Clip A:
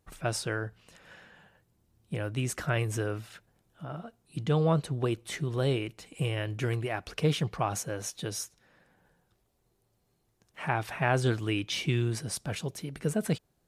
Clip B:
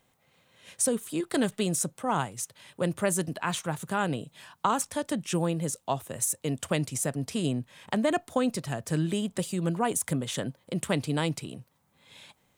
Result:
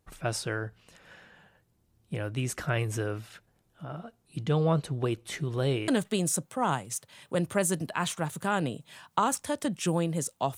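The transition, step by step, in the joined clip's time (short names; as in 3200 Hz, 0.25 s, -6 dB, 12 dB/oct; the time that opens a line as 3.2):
clip A
5.88 switch to clip B from 1.35 s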